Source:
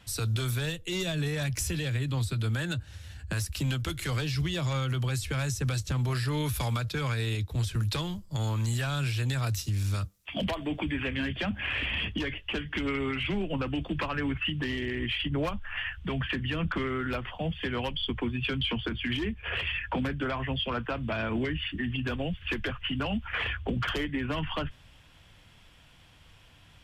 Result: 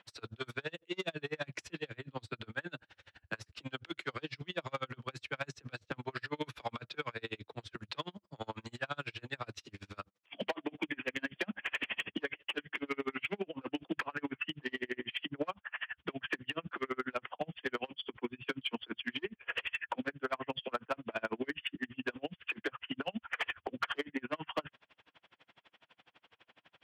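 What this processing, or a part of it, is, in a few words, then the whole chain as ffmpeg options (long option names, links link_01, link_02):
helicopter radio: -af "highpass=350,lowpass=2700,aeval=exprs='val(0)*pow(10,-37*(0.5-0.5*cos(2*PI*12*n/s))/20)':channel_layout=same,asoftclip=type=hard:threshold=-29dB,volume=3.5dB"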